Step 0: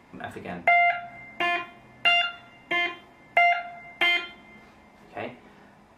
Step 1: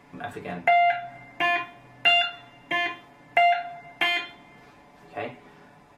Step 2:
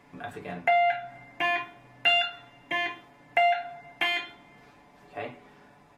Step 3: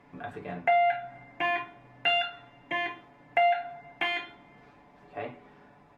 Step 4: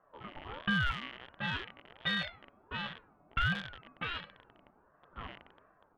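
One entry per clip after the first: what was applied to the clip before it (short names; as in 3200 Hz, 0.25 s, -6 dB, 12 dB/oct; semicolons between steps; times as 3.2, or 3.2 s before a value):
comb 6.9 ms, depth 59%
de-hum 81.49 Hz, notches 18; gain -3 dB
LPF 2200 Hz 6 dB/oct
rattling part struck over -55 dBFS, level -22 dBFS; low-pass opened by the level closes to 490 Hz, open at -20.5 dBFS; ring modulator with a swept carrier 670 Hz, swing 35%, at 1.4 Hz; gain -4.5 dB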